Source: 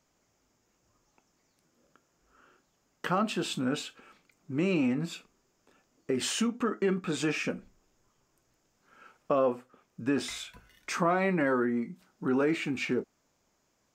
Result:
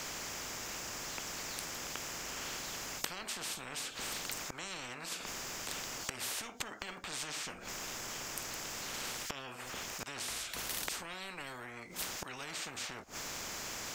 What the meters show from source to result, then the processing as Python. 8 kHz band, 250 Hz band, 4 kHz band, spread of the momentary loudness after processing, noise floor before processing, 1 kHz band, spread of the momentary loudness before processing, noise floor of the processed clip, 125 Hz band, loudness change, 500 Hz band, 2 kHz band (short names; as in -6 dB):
+5.0 dB, -20.0 dB, +1.0 dB, 4 LU, -74 dBFS, -8.0 dB, 13 LU, -49 dBFS, -14.0 dB, -9.5 dB, -16.5 dB, -4.5 dB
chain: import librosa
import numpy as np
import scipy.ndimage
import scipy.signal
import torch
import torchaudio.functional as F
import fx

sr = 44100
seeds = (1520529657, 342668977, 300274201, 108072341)

y = fx.gate_flip(x, sr, shuts_db=-31.0, range_db=-26)
y = fx.transient(y, sr, attack_db=-4, sustain_db=0)
y = fx.spectral_comp(y, sr, ratio=10.0)
y = F.gain(torch.from_numpy(y), 14.5).numpy()